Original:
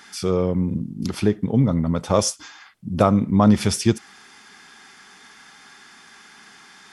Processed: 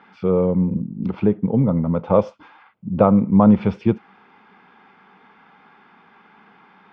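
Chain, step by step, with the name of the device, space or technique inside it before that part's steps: bass cabinet (speaker cabinet 78–2400 Hz, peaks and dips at 190 Hz +6 dB, 500 Hz +7 dB, 900 Hz +5 dB, 1800 Hz -10 dB); gain -1 dB

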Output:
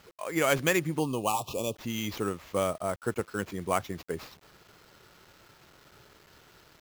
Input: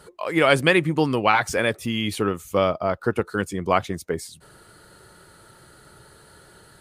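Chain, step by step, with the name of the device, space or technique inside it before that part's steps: early 8-bit sampler (sample-rate reducer 9300 Hz, jitter 0%; bit-crush 8-bit); 0.99–1.76 Chebyshev band-stop 1200–2500 Hz, order 5; gain -8 dB

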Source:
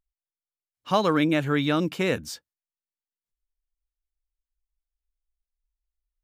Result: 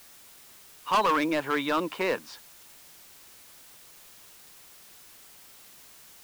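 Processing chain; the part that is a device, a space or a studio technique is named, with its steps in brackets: drive-through speaker (BPF 380–3300 Hz; bell 1000 Hz +11 dB 0.48 oct; hard clip -19.5 dBFS, distortion -7 dB; white noise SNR 19 dB)

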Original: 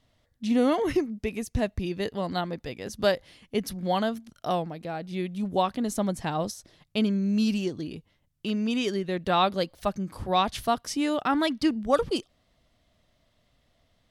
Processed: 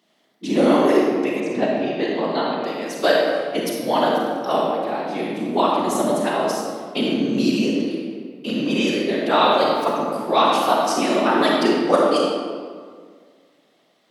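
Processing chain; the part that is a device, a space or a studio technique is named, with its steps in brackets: whispering ghost (whisperiser; HPF 230 Hz 24 dB/oct; reverb RT60 1.9 s, pre-delay 31 ms, DRR -2.5 dB); 1.4–2.64 LPF 4200 Hz 12 dB/oct; gain +4.5 dB

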